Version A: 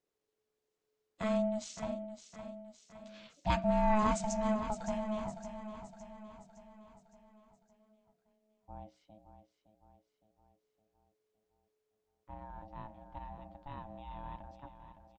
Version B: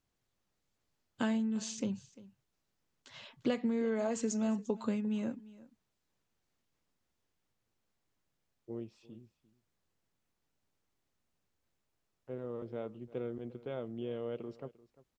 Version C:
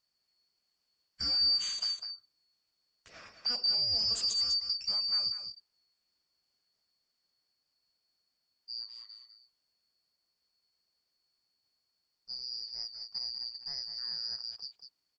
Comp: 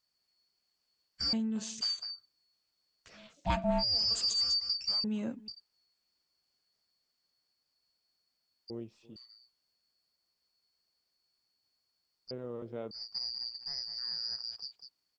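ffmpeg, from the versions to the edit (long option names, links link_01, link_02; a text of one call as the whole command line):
ffmpeg -i take0.wav -i take1.wav -i take2.wav -filter_complex "[1:a]asplit=4[link_01][link_02][link_03][link_04];[2:a]asplit=6[link_05][link_06][link_07][link_08][link_09][link_10];[link_05]atrim=end=1.332[link_11];[link_01]atrim=start=1.328:end=1.812[link_12];[link_06]atrim=start=1.808:end=3.19[link_13];[0:a]atrim=start=3.13:end=3.84[link_14];[link_07]atrim=start=3.78:end=5.042[link_15];[link_02]atrim=start=5.038:end=5.482[link_16];[link_08]atrim=start=5.478:end=8.702[link_17];[link_03]atrim=start=8.698:end=9.162[link_18];[link_09]atrim=start=9.158:end=12.312[link_19];[link_04]atrim=start=12.308:end=12.912[link_20];[link_10]atrim=start=12.908[link_21];[link_11][link_12]acrossfade=duration=0.004:curve1=hsin:curve2=hsin[link_22];[link_22][link_13]acrossfade=duration=0.004:curve1=hsin:curve2=hsin[link_23];[link_23][link_14]acrossfade=duration=0.06:curve1=tri:curve2=tri[link_24];[link_24][link_15]acrossfade=duration=0.06:curve1=tri:curve2=tri[link_25];[link_25][link_16]acrossfade=duration=0.004:curve1=hsin:curve2=hsin[link_26];[link_26][link_17]acrossfade=duration=0.004:curve1=hsin:curve2=hsin[link_27];[link_27][link_18]acrossfade=duration=0.004:curve1=hsin:curve2=hsin[link_28];[link_28][link_19]acrossfade=duration=0.004:curve1=hsin:curve2=hsin[link_29];[link_29][link_20]acrossfade=duration=0.004:curve1=hsin:curve2=hsin[link_30];[link_30][link_21]acrossfade=duration=0.004:curve1=hsin:curve2=hsin" out.wav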